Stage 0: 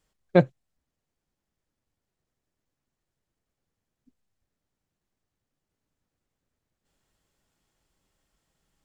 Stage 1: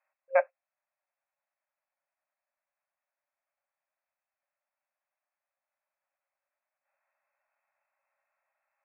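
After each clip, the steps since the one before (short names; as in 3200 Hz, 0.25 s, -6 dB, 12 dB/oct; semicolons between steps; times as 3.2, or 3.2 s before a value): FFT band-pass 530–2700 Hz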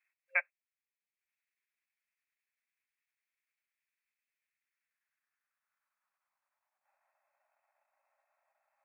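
transient shaper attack +3 dB, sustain -8 dB; high-pass sweep 2200 Hz -> 680 Hz, 4.51–7.27; gain -1.5 dB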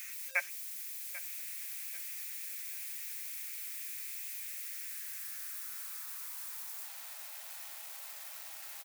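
switching spikes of -33 dBFS; feedback echo 0.791 s, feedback 35%, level -16 dB; gain -1.5 dB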